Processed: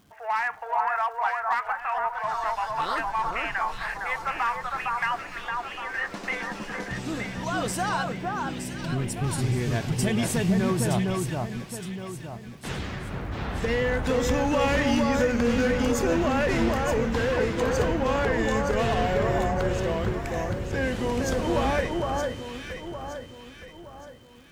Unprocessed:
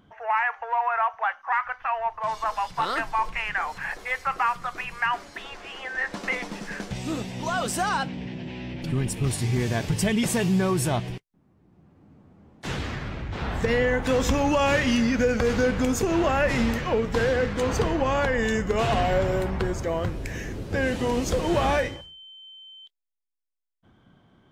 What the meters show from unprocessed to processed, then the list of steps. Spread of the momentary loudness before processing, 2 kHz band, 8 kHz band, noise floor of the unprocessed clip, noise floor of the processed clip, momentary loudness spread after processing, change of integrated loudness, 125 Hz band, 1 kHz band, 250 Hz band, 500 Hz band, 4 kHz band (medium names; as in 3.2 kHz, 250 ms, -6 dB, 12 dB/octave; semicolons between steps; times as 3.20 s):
12 LU, -1.0 dB, -1.5 dB, -62 dBFS, -44 dBFS, 12 LU, -1.0 dB, -0.5 dB, -0.5 dB, -0.5 dB, -0.5 dB, -1.5 dB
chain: crackle 430 per s -48 dBFS; hard clipper -17 dBFS, distortion -22 dB; echo whose repeats swap between lows and highs 459 ms, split 1.6 kHz, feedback 62%, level -2 dB; trim -2.5 dB